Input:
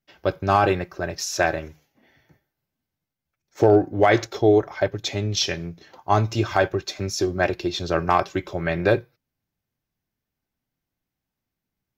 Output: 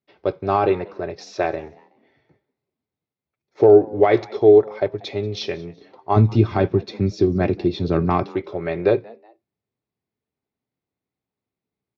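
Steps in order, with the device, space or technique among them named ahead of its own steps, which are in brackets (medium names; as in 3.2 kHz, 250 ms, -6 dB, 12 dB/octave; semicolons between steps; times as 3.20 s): 6.16–8.26 s: resonant low shelf 330 Hz +10.5 dB, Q 1.5; frequency-shifting delay pedal into a guitar cabinet (frequency-shifting echo 186 ms, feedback 35%, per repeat +110 Hz, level -23.5 dB; cabinet simulation 98–4100 Hz, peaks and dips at 160 Hz -3 dB, 420 Hz +8 dB, 1.6 kHz -8 dB, 3 kHz -7 dB); trim -1 dB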